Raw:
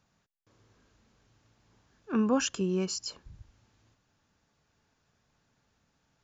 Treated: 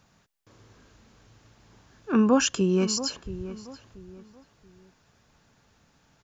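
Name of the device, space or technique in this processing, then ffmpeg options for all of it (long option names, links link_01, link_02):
parallel compression: -filter_complex "[0:a]asplit=2[link_01][link_02];[link_02]acompressor=threshold=-43dB:ratio=6,volume=-4dB[link_03];[link_01][link_03]amix=inputs=2:normalize=0,asplit=2[link_04][link_05];[link_05]adelay=681,lowpass=frequency=1900:poles=1,volume=-13.5dB,asplit=2[link_06][link_07];[link_07]adelay=681,lowpass=frequency=1900:poles=1,volume=0.32,asplit=2[link_08][link_09];[link_09]adelay=681,lowpass=frequency=1900:poles=1,volume=0.32[link_10];[link_04][link_06][link_08][link_10]amix=inputs=4:normalize=0,volume=5.5dB"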